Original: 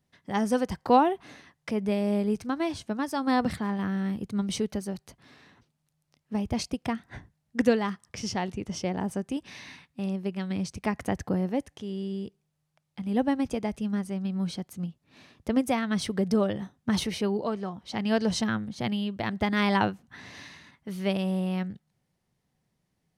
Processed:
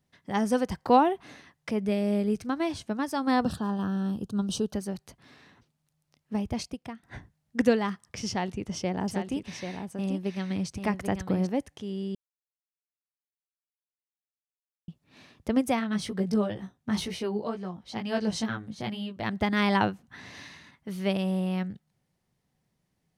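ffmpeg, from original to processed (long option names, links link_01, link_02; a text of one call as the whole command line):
ffmpeg -i in.wav -filter_complex "[0:a]asettb=1/sr,asplit=3[link_01][link_02][link_03];[link_01]atrim=end=1.814[link_04];[link_02]atrim=start=1.81:end=2.44,asetpts=PTS-STARTPTS,afade=type=in:duration=0.004:curve=qsin,afade=type=out:start_time=0.626:duration=0.004:curve=qsin,equalizer=frequency=930:width_type=o:width=0.21:gain=-15[link_05];[link_03]atrim=start=2.436[link_06];[link_04][link_05]acrossfade=duration=0.004:curve1=hsin:curve2=qsin[link_07];[link_07][link_06]acrossfade=duration=0.004:curve1=qsin:curve2=hsin,asettb=1/sr,asplit=3[link_08][link_09][link_10];[link_08]atrim=end=3.434[link_11];[link_09]atrim=start=3.43:end=4.74,asetpts=PTS-STARTPTS,afade=type=in:duration=0.004:curve=qsin,afade=type=out:start_time=1.306:duration=0.004:curve=qsin,asuperstop=centerf=2100:order=4:qfactor=1.8[link_12];[link_10]atrim=start=4.736[link_13];[link_11][link_12]acrossfade=duration=0.004:curve1=hsin:curve2=qsin[link_14];[link_14][link_13]acrossfade=duration=0.004:curve1=qsin:curve2=hsin,asettb=1/sr,asplit=3[link_15][link_16][link_17];[link_15]atrim=end=8.294[link_18];[link_16]atrim=start=8.29:end=11.47,asetpts=PTS-STARTPTS,afade=type=in:duration=0.004:curve=qsin,afade=type=out:start_time=3.176:duration=0.004:curve=qsin,aecho=1:1:788:0.447,atrim=end_sample=140238[link_19];[link_17]atrim=start=11.466[link_20];[link_18][link_19]acrossfade=duration=0.004:curve1=hsin:curve2=qsin[link_21];[link_21][link_20]acrossfade=duration=0.004:curve1=qsin:curve2=hsin,asplit=3[link_22][link_23][link_24];[link_22]afade=type=out:start_time=15.79:duration=0.02[link_25];[link_23]flanger=delay=16:depth=3.3:speed=2.1,afade=type=in:start_time=15.79:duration=0.02,afade=type=out:start_time=19.23:duration=0.02[link_26];[link_24]afade=type=in:start_time=19.23:duration=0.02[link_27];[link_25][link_26][link_27]amix=inputs=3:normalize=0,asplit=4[link_28][link_29][link_30][link_31];[link_28]atrim=end=7.03,asetpts=PTS-STARTPTS,afade=type=out:start_time=6.34:duration=0.69:silence=0.158489[link_32];[link_29]atrim=start=7.03:end=12.15,asetpts=PTS-STARTPTS,afade=type=in:duration=0.004:curve=hsin:silence=0.158489,afade=type=out:start_time=5.116:duration=0.004:curve=hsin[link_33];[link_30]atrim=start=12.15:end=14.88,asetpts=PTS-STARTPTS,volume=0[link_34];[link_31]atrim=start=14.88,asetpts=PTS-STARTPTS,afade=type=in:duration=0.004:curve=hsin[link_35];[link_32][link_33][link_34][link_35]concat=n=4:v=0:a=1" out.wav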